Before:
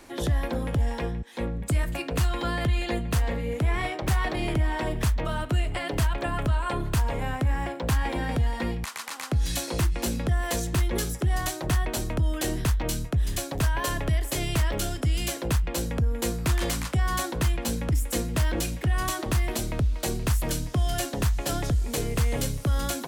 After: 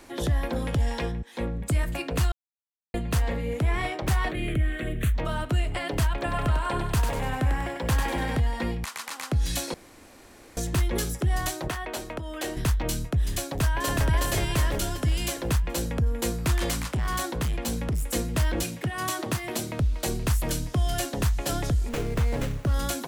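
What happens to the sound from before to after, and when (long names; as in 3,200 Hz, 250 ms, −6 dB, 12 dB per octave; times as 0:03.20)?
0:00.56–0:01.12: parametric band 4,900 Hz +6 dB 2.2 octaves
0:02.32–0:02.94: silence
0:04.31–0:05.15: phaser with its sweep stopped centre 2,200 Hz, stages 4
0:06.18–0:08.40: feedback echo with a high-pass in the loop 97 ms, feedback 53%, high-pass 540 Hz, level −4.5 dB
0:09.74–0:10.57: fill with room tone
0:11.68–0:12.57: bass and treble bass −14 dB, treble −6 dB
0:13.43–0:14.07: delay throw 370 ms, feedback 50%, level −1.5 dB
0:16.81–0:18.10: hard clipping −23.5 dBFS
0:18.63–0:19.80: high-pass filter 110 Hz 24 dB per octave
0:21.89–0:22.74: windowed peak hold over 9 samples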